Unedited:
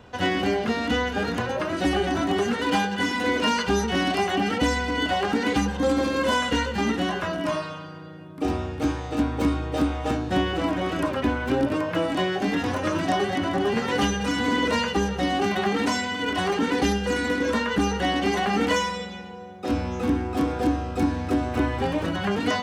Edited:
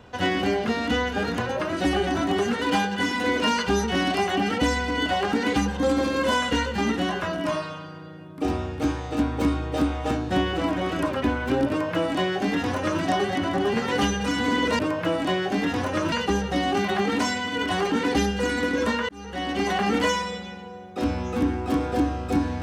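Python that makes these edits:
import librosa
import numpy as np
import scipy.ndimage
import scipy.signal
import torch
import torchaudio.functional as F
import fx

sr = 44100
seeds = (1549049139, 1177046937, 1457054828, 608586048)

y = fx.edit(x, sr, fx.duplicate(start_s=11.69, length_s=1.33, to_s=14.79),
    fx.fade_in_span(start_s=17.76, length_s=0.63), tone=tone)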